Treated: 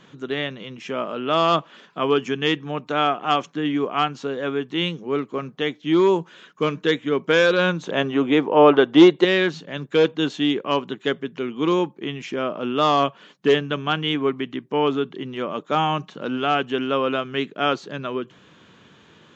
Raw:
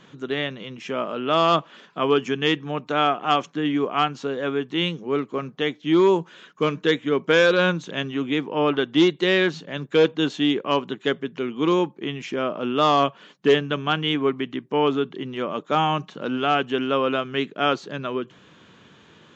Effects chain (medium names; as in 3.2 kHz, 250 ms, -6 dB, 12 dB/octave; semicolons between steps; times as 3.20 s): 7.82–9.25 s: peaking EQ 660 Hz +10.5 dB 2.4 oct